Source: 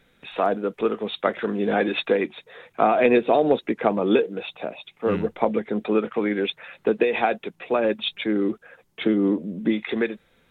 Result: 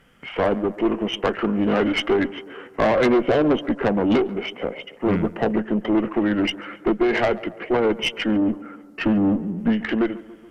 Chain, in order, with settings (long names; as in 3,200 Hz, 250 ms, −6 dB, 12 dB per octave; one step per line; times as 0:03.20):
formants moved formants −3 semitones
tube saturation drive 20 dB, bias 0.45
tape delay 139 ms, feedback 66%, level −16 dB, low-pass 1,600 Hz
level +6.5 dB